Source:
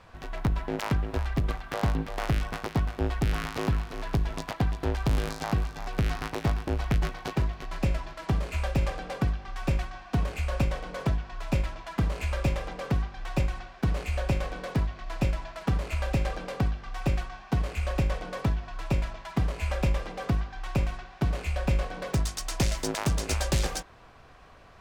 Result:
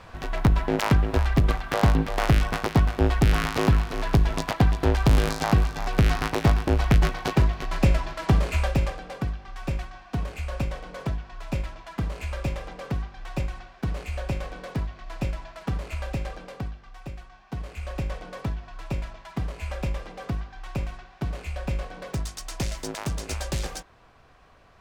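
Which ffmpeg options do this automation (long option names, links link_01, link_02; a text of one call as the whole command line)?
ffmpeg -i in.wav -af "volume=16dB,afade=type=out:start_time=8.47:duration=0.53:silence=0.354813,afade=type=out:start_time=15.94:duration=1.21:silence=0.316228,afade=type=in:start_time=17.15:duration=0.96:silence=0.354813" out.wav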